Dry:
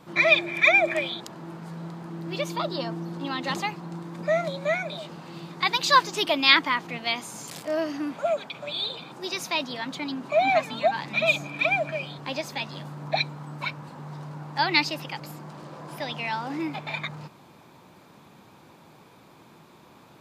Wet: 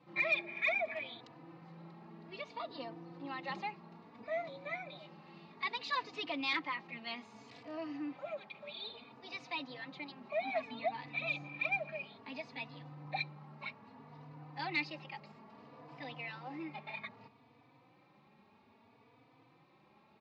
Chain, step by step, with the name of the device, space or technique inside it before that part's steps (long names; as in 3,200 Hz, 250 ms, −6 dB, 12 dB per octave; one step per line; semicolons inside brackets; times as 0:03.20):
barber-pole flanger into a guitar amplifier (barber-pole flanger 3.4 ms +0.61 Hz; soft clipping −16 dBFS, distortion −14 dB; loudspeaker in its box 110–3,800 Hz, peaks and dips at 170 Hz −10 dB, 350 Hz −8 dB, 600 Hz −6 dB, 990 Hz −4 dB, 1,500 Hz −10 dB, 3,300 Hz −8 dB)
level −5.5 dB